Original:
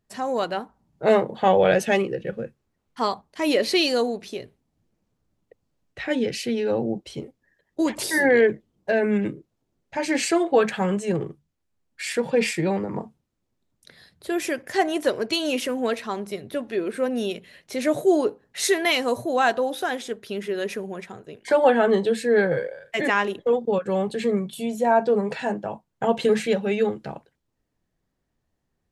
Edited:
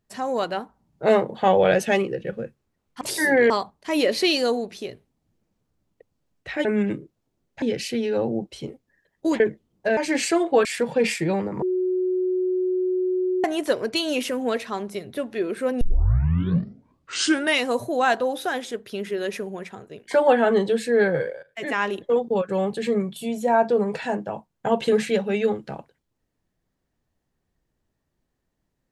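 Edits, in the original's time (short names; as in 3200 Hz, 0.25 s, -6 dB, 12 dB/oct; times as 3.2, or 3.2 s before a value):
7.94–8.43 move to 3.01
9–9.97 move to 6.16
10.65–12.02 cut
12.99–14.81 bleep 368 Hz -20 dBFS
17.18 tape start 1.86 s
22.8–23.33 fade in, from -15 dB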